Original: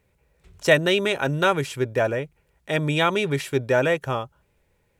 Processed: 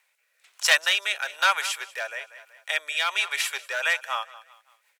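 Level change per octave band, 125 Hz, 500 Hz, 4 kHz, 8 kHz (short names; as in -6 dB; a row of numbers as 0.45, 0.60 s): under -40 dB, -16.5 dB, +3.5 dB, +7.5 dB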